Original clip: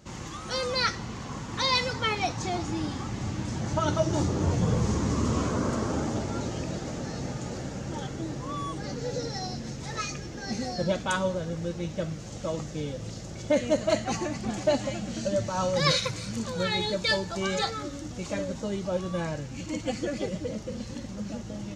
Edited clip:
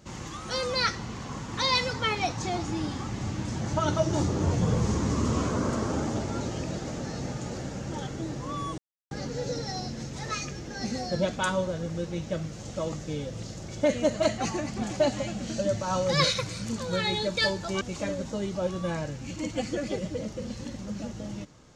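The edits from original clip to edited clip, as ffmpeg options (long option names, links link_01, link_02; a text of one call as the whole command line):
ffmpeg -i in.wav -filter_complex "[0:a]asplit=3[link_01][link_02][link_03];[link_01]atrim=end=8.78,asetpts=PTS-STARTPTS,afade=type=out:start_time=8.776:duration=0.004:curve=hsin,apad=pad_dur=0.33[link_04];[link_02]atrim=start=8.78:end=17.482,asetpts=PTS-STARTPTS,afade=type=in:duration=0.004:curve=hsin[link_05];[link_03]atrim=start=18.108[link_06];[link_04][link_05]concat=n=2:v=0:a=1[link_07];[link_07][link_06]acrossfade=duration=0.004:curve1=hsin:curve2=hsin" out.wav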